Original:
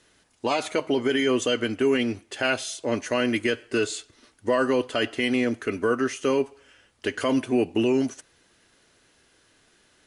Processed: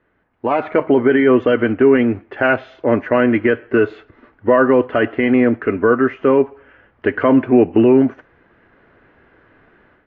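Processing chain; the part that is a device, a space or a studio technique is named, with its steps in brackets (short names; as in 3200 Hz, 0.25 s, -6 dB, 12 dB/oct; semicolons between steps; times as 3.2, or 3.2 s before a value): action camera in a waterproof case (LPF 1900 Hz 24 dB/oct; AGC gain up to 13 dB; AAC 48 kbps 16000 Hz)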